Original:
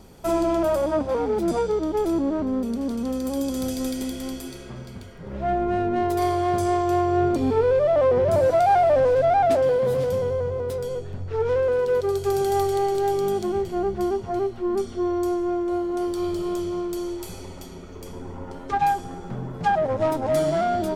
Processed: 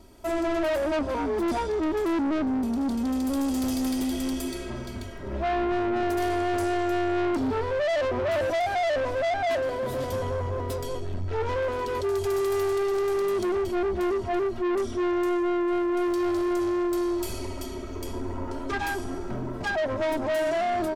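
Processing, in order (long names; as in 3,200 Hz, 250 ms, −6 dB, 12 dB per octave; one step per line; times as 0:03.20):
comb filter 3.1 ms, depth 79%
automatic gain control gain up to 9 dB
soft clipping −17.5 dBFS, distortion −8 dB
level −6 dB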